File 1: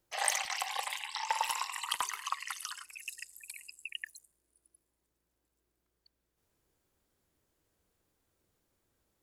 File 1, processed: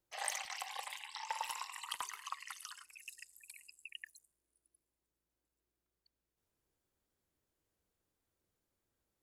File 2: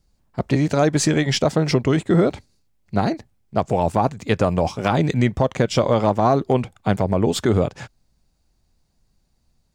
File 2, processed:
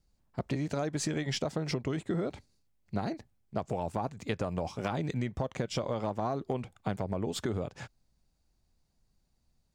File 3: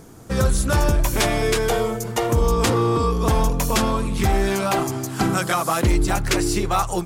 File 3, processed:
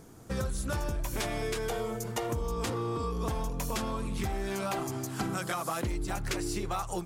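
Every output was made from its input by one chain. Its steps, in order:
downward compressor, threshold −21 dBFS
level −8 dB

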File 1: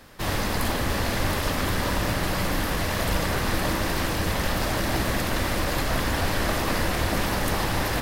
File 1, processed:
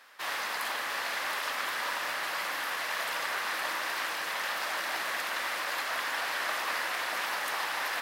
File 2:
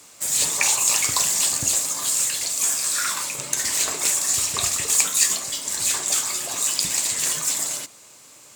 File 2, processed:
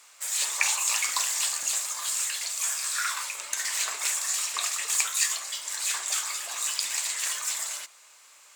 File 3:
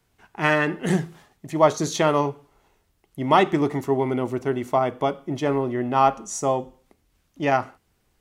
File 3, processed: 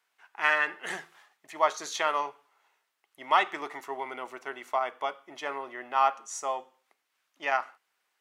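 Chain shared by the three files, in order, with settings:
high-pass filter 1,300 Hz 12 dB per octave
high-shelf EQ 2,800 Hz −11.5 dB
level +3 dB

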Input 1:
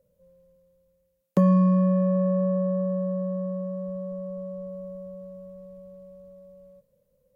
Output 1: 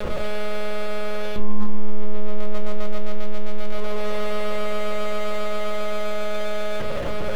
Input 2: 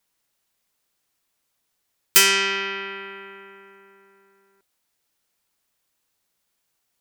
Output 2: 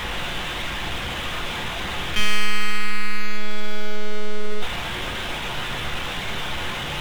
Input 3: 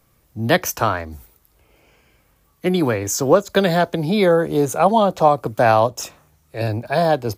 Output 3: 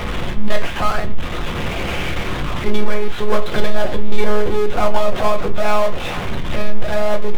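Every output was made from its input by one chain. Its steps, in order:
converter with a step at zero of −26.5 dBFS
in parallel at +1 dB: downward compressor, threshold −30 dBFS
on the sum: one-pitch LPC vocoder at 8 kHz 210 Hz
power curve on the samples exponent 0.5
rectangular room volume 140 cubic metres, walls furnished, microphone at 0.9 metres
level −11.5 dB

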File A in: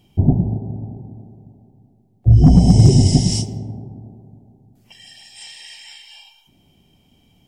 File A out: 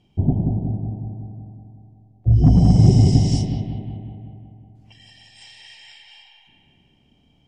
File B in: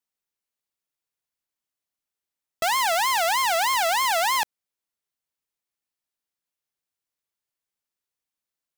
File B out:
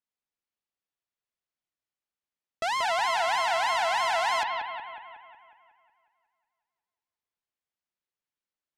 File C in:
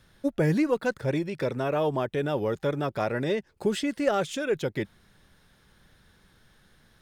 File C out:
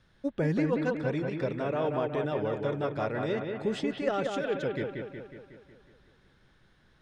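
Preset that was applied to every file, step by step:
high-frequency loss of the air 77 metres
on a send: bucket-brigade delay 183 ms, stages 4,096, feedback 57%, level −4.5 dB
on the sum: level −4.5 dB

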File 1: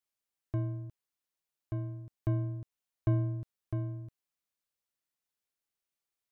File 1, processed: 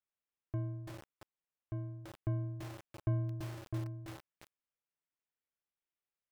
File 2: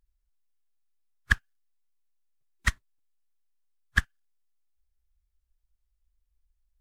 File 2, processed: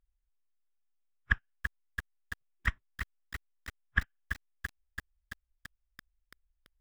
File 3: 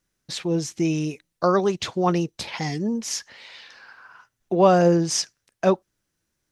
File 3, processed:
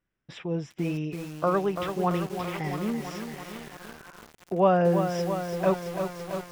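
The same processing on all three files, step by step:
dynamic equaliser 340 Hz, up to −5 dB, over −39 dBFS, Q 5.6
Savitzky-Golay smoothing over 25 samples
feedback echo at a low word length 335 ms, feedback 80%, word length 6 bits, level −7 dB
level −4.5 dB

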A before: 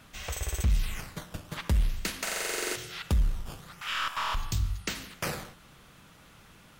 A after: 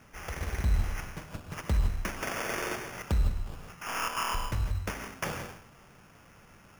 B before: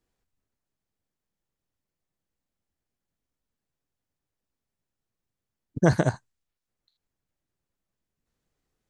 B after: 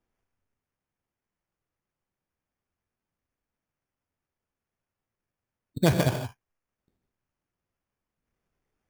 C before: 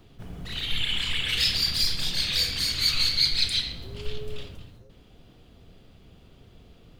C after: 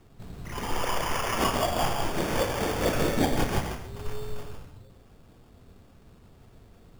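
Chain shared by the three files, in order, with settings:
reverb whose tail is shaped and stops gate 180 ms rising, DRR 5.5 dB
decimation without filtering 11×
level −2 dB

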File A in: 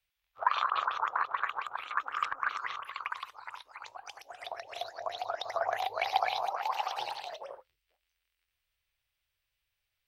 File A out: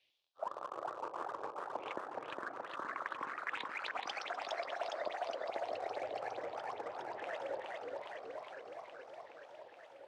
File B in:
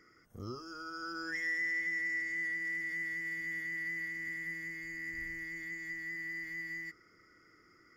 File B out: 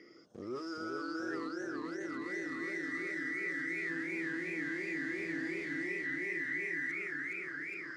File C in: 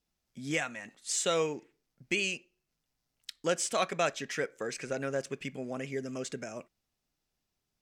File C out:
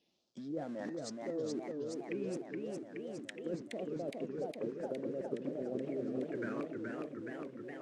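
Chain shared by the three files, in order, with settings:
treble cut that deepens with the level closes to 330 Hz, closed at −32 dBFS
all-pass phaser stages 4, 0.26 Hz, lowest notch 640–2,800 Hz
in parallel at −8.5 dB: centre clipping without the shift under −50 dBFS
on the sum: loudspeaker in its box 250–8,700 Hz, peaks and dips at 340 Hz +4 dB, 570 Hz +5 dB, 1,700 Hz +5 dB
reversed playback
downward compressor 8 to 1, threshold −48 dBFS
reversed playback
feedback echo with a swinging delay time 417 ms, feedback 76%, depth 196 cents, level −3 dB
level +10 dB

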